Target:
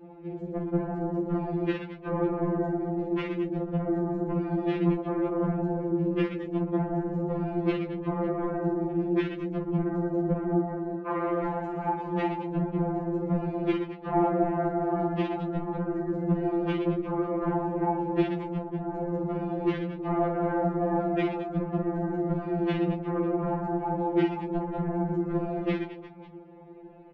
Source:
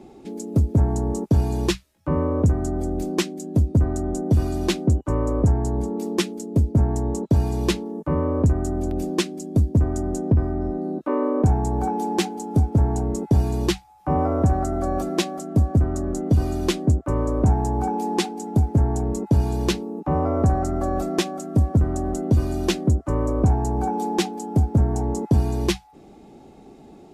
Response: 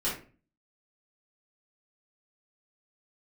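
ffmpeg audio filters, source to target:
-filter_complex "[0:a]volume=16dB,asoftclip=hard,volume=-16dB,asettb=1/sr,asplit=3[link_01][link_02][link_03];[link_01]atrim=end=10.694[link_04];[link_02]atrim=start=10.69:end=12.14,asetpts=PTS-STARTPTS,afade=type=in:duration=0.004:curve=qsin,afade=type=out:start_time=1.446:duration=0.004:curve=qsin,tiltshelf=frequency=770:gain=-7.5[link_05];[link_03]atrim=start=12.136[link_06];[link_04][link_05]acrossfade=duration=0.004:curve1=hsin:curve2=qsin[link_07];[link_07][link_06]acrossfade=duration=0.004:curve1=qsin:curve2=hsin,asettb=1/sr,asplit=3[link_08][link_09][link_10];[link_08]atrim=end=18.404[link_11];[link_09]atrim=start=18.4:end=18.9,asetpts=PTS-STARTPTS,afade=type=in:duration=0.004:curve=qsin,afade=type=out:start_time=0.496:duration=0.004:curve=qsin,acompressor=threshold=-27dB:ratio=3[link_12];[link_10]atrim=start=18.896[link_13];[link_11][link_12]acrossfade=duration=0.004:curve1=hsin:curve2=qsin[link_14];[link_14][link_13]acrossfade=duration=0.004:curve1=qsin:curve2=hsin,highpass=frequency=140:width=0.5412,highpass=frequency=140:width=1.3066,aecho=1:1:50|120|218|355.2|547.3:0.631|0.398|0.251|0.158|0.1,afftfilt=real='hypot(re,im)*cos(2*PI*random(0))':imag='hypot(re,im)*sin(2*PI*random(1))':win_size=512:overlap=0.75,lowpass=frequency=2400:width=0.5412,lowpass=frequency=2400:width=1.3066,afftfilt=real='re*2.83*eq(mod(b,8),0)':imag='im*2.83*eq(mod(b,8),0)':win_size=2048:overlap=0.75,volume=4dB"

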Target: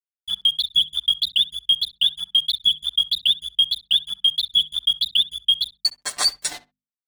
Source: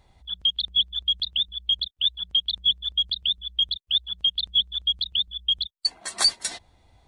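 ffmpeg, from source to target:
ffmpeg -i in.wav -filter_complex "[0:a]aeval=exprs='val(0)+0.00282*sin(2*PI*4800*n/s)':channel_layout=same,aecho=1:1:6.8:0.99,alimiter=limit=-15dB:level=0:latency=1:release=423,dynaudnorm=framelen=140:gausssize=3:maxgain=6.5dB,aeval=exprs='sgn(val(0))*max(abs(val(0))-0.0168,0)':channel_layout=same,bandreject=frequency=50:width_type=h:width=6,bandreject=frequency=100:width_type=h:width=6,bandreject=frequency=150:width_type=h:width=6,bandreject=frequency=200:width_type=h:width=6,bandreject=frequency=250:width_type=h:width=6,asplit=2[link_01][link_02];[link_02]adelay=65,lowpass=frequency=2100:poles=1,volume=-15.5dB,asplit=2[link_03][link_04];[link_04]adelay=65,lowpass=frequency=2100:poles=1,volume=0.16[link_05];[link_03][link_05]amix=inputs=2:normalize=0[link_06];[link_01][link_06]amix=inputs=2:normalize=0" out.wav

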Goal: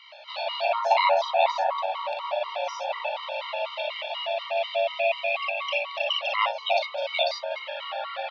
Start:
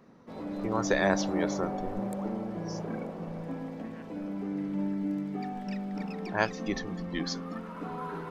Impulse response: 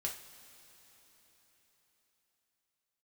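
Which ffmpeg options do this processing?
-filter_complex "[0:a]asettb=1/sr,asplit=3[link_01][link_02][link_03];[link_01]atrim=end=4.994[link_04];[link_02]atrim=start=4.99:end=5.91,asetpts=PTS-STARTPTS,afade=type=in:duration=0.004:curve=qsin,afade=type=out:start_time=0.916:duration=0.004:curve=qsin,equalizer=frequency=2100:width=4.4:gain=15[link_05];[link_03]atrim=start=5.906[link_06];[link_04][link_05]acrossfade=duration=0.004:curve1=hsin:curve2=qsin[link_07];[link_07][link_06]acrossfade=duration=0.004:curve1=qsin:curve2=hsin,acrossover=split=820[link_08][link_09];[link_09]acompressor=threshold=-51dB:ratio=6[link_10];[link_08][link_10]amix=inputs=2:normalize=0,highpass=frequency=180:width_type=q:width=0.5412,highpass=frequency=180:width_type=q:width=1.307,lowpass=frequency=3300:width_type=q:width=0.5176,lowpass=frequency=3300:width_type=q:width=0.7071,lowpass=frequency=3300:width_type=q:width=1.932,afreqshift=380,aexciter=amount=12.5:drive=8.4:freq=2500,asplit=2[link_11][link_12];[link_12]aecho=0:1:42|58:0.473|0.708[link_13];[link_11][link_13]amix=inputs=2:normalize=0,afftfilt=real='re*gt(sin(2*PI*4.1*pts/sr)*(1-2*mod(floor(b*sr/1024/460),2)),0)':imag='im*gt(sin(2*PI*4.1*pts/sr)*(1-2*mod(floor(b*sr/1024/460),2)),0)':win_size=1024:overlap=0.75,volume=7.5dB"

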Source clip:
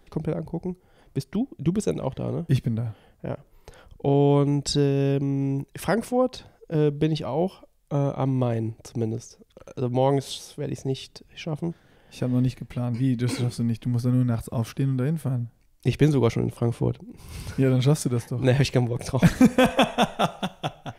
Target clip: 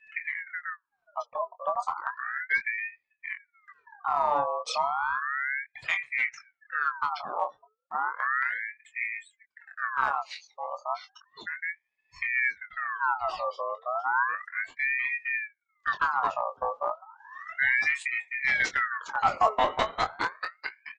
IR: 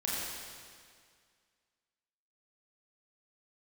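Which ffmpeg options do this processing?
-filter_complex "[0:a]afftdn=noise_reduction=27:noise_floor=-37,adynamicequalizer=threshold=0.00251:dfrequency=4200:dqfactor=4.9:tfrequency=4200:tqfactor=4.9:attack=5:release=100:ratio=0.375:range=2:mode=boostabove:tftype=bell,acompressor=mode=upward:threshold=-38dB:ratio=2.5,aresample=16000,aeval=exprs='clip(val(0),-1,0.168)':channel_layout=same,aresample=44100,asplit=2[link_01][link_02];[link_02]adelay=23,volume=-7dB[link_03];[link_01][link_03]amix=inputs=2:normalize=0,afreqshift=-440,aeval=exprs='val(0)*sin(2*PI*1500*n/s+1500*0.45/0.33*sin(2*PI*0.33*n/s))':channel_layout=same,volume=-4dB"

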